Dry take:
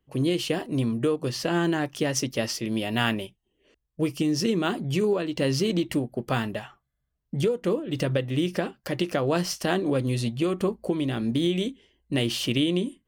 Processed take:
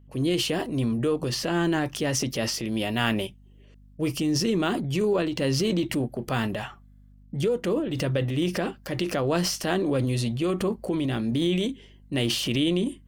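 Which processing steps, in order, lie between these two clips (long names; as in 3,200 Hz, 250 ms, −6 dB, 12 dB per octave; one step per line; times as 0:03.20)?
transient designer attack −3 dB, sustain +7 dB
mains hum 50 Hz, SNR 26 dB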